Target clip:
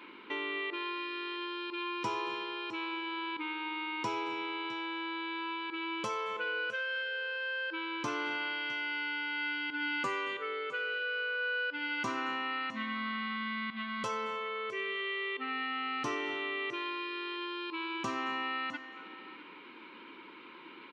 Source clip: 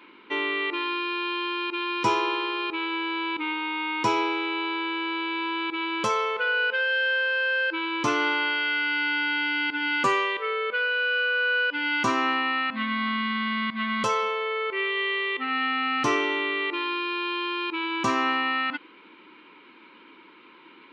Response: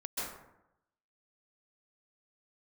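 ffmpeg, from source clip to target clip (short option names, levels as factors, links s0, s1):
-filter_complex "[0:a]acompressor=threshold=0.00794:ratio=2,aecho=1:1:659:0.141,asplit=2[s0][s1];[1:a]atrim=start_sample=2205,adelay=89[s2];[s1][s2]afir=irnorm=-1:irlink=0,volume=0.141[s3];[s0][s3]amix=inputs=2:normalize=0"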